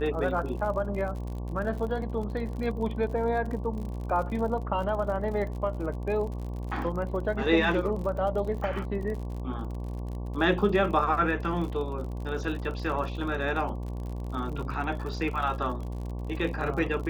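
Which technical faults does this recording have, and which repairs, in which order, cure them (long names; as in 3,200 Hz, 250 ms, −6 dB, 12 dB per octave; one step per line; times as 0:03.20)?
mains buzz 60 Hz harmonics 19 −34 dBFS
surface crackle 50 per second −36 dBFS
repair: click removal
hum removal 60 Hz, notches 19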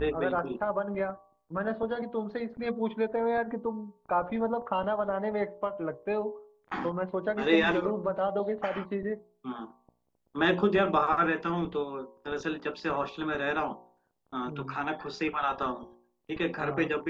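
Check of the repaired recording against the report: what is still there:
none of them is left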